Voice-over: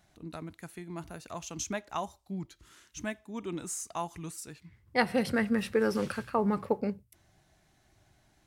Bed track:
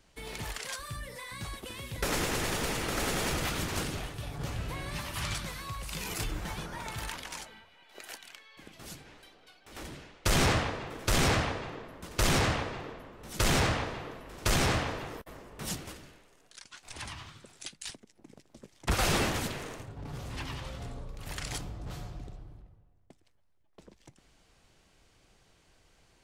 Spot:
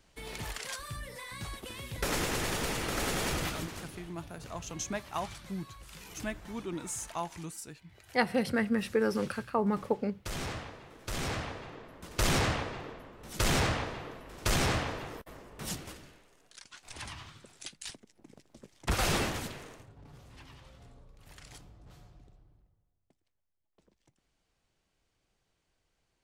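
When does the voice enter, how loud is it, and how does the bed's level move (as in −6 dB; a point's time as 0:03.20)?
3.20 s, −1.0 dB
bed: 0:03.41 −1 dB
0:03.84 −12 dB
0:10.86 −12 dB
0:12.19 −1.5 dB
0:19.13 −1.5 dB
0:20.26 −14 dB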